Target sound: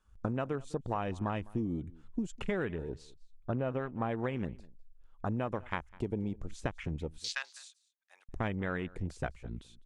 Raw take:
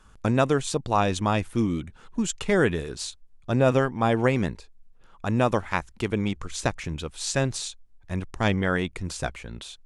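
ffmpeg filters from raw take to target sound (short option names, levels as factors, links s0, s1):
-filter_complex "[0:a]asettb=1/sr,asplit=3[s0][s1][s2];[s0]atrim=end=2.654[s3];[s1]atrim=start=2.65:end=4.09,asetpts=PTS-STARTPTS,afade=t=in:d=0.004:c=qsin,afade=t=out:st=1.436:d=0.004:c=qsin,lowpass=f=3200:p=1[s4];[s2]atrim=start=4.086[s5];[s3][s4]acrossfade=d=0.004:c1=hsin:c2=qsin[s6];[s6][s5]acrossfade=d=0.004:c1=qsin:c2=hsin,afwtdn=0.02,asettb=1/sr,asplit=3[s7][s8][s9];[s7]atrim=end=7.184[s10];[s8]atrim=start=7.18:end=8.29,asetpts=PTS-STARTPTS,afade=t=in:d=0.004:c=qsin,afade=t=out:st=1.106:d=0.004:c=qsin,highpass=f=1200:w=0.5412,highpass=f=1200:w=1.3066[s11];[s9]atrim=start=8.286[s12];[s10][s11]acrossfade=d=0.004:c1=hsin:c2=qsin[s13];[s13][s12]acrossfade=d=0.004:c1=qsin:c2=hsin,acompressor=threshold=0.0398:ratio=6,asplit=2[s14][s15];[s15]aecho=0:1:204:0.075[s16];[s14][s16]amix=inputs=2:normalize=0,volume=0.75"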